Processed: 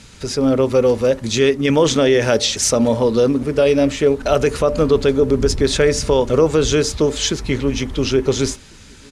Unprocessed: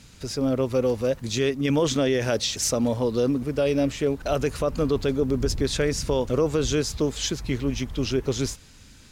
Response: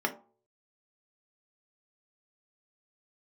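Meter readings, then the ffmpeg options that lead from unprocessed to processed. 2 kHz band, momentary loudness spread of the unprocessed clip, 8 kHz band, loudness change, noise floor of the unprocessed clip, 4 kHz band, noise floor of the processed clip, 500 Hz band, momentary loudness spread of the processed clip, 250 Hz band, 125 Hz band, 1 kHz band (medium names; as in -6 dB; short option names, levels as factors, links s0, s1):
+9.0 dB, 4 LU, +7.5 dB, +8.0 dB, -49 dBFS, +8.0 dB, -42 dBFS, +9.5 dB, 5 LU, +7.0 dB, +5.5 dB, +9.0 dB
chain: -filter_complex "[0:a]lowpass=f=11000:w=0.5412,lowpass=f=11000:w=1.3066,asplit=2[s0][s1];[s1]adelay=1399,volume=0.0398,highshelf=f=4000:g=-31.5[s2];[s0][s2]amix=inputs=2:normalize=0,asplit=2[s3][s4];[1:a]atrim=start_sample=2205[s5];[s4][s5]afir=irnorm=-1:irlink=0,volume=0.141[s6];[s3][s6]amix=inputs=2:normalize=0,volume=2.24"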